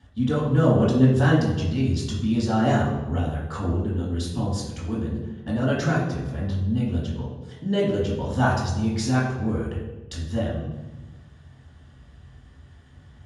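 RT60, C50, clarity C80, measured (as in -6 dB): 1.1 s, 2.5 dB, 5.0 dB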